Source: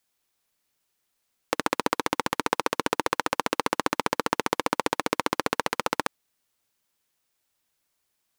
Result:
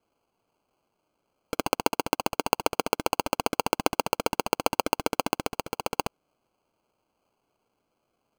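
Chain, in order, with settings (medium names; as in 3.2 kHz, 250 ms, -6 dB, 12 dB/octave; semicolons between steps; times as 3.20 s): 1.82–2.44 s: treble shelf 3.2 kHz -8 dB; sample-and-hold 24×; bass shelf 170 Hz -8 dB; 5.33–5.91 s: compression, threshold -26 dBFS, peak gain reduction 7.5 dB; trim +1 dB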